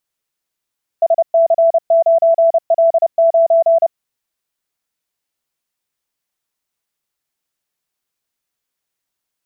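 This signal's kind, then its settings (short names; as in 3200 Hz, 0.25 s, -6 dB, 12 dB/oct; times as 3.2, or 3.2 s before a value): Morse "SC9L9" 30 wpm 664 Hz -7.5 dBFS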